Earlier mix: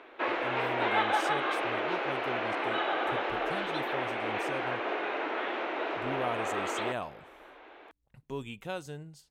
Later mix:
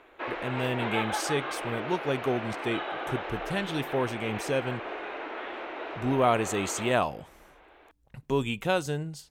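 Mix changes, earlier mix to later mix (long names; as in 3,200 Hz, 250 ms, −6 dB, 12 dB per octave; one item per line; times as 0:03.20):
speech +11.0 dB
background −4.0 dB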